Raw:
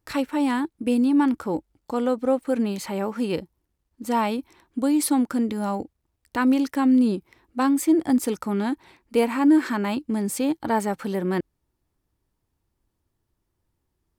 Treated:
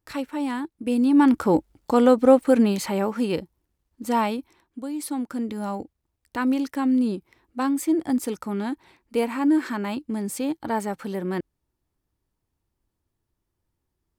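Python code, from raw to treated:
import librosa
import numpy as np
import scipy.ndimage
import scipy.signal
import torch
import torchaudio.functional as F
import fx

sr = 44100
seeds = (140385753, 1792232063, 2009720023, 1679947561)

y = fx.gain(x, sr, db=fx.line((0.76, -4.5), (1.44, 7.0), (2.38, 7.0), (3.35, 0.5), (4.22, 0.5), (4.88, -10.5), (5.57, -3.0)))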